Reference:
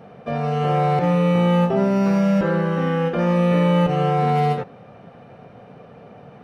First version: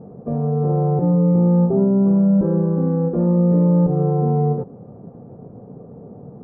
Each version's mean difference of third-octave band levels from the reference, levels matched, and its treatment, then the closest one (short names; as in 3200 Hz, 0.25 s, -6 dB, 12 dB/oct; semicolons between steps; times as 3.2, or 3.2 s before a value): 8.5 dB: Chebyshev low-pass 950 Hz, order 3; resonant low shelf 520 Hz +8.5 dB, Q 1.5; in parallel at -2.5 dB: compressor, threshold -22 dBFS, peak gain reduction 14 dB; on the sum: gain -7 dB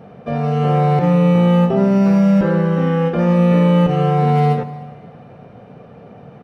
2.5 dB: low shelf 470 Hz +5.5 dB; on a send: echo 0.304 s -23 dB; on the sum: Schroeder reverb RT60 1.7 s, combs from 30 ms, DRR 16 dB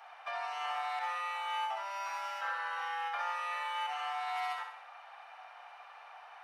16.5 dB: compressor 3:1, threshold -26 dBFS, peak gain reduction 8.5 dB; elliptic high-pass 820 Hz, stop band 60 dB; on a send: flutter echo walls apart 11 m, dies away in 0.66 s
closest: second